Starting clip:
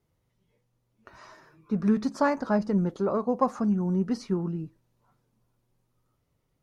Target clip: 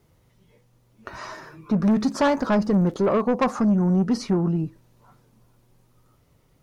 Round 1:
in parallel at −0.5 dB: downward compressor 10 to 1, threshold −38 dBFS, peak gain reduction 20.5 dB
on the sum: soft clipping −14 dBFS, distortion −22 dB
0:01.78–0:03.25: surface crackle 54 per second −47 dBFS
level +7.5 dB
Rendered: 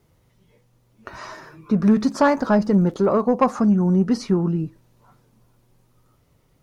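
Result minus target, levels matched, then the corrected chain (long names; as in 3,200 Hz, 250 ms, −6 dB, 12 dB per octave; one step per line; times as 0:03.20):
soft clipping: distortion −10 dB
in parallel at −0.5 dB: downward compressor 10 to 1, threshold −38 dBFS, peak gain reduction 20.5 dB
on the sum: soft clipping −22 dBFS, distortion −12 dB
0:01.78–0:03.25: surface crackle 54 per second −47 dBFS
level +7.5 dB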